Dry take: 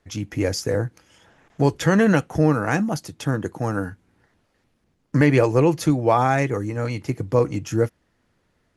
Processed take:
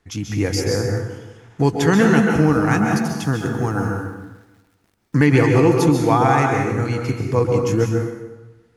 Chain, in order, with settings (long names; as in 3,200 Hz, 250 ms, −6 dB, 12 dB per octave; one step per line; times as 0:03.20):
parametric band 580 Hz −13 dB 0.22 octaves
0:02.30–0:05.16: bit-depth reduction 10 bits, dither none
dense smooth reverb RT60 1.1 s, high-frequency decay 0.75×, pre-delay 120 ms, DRR 1.5 dB
level +2 dB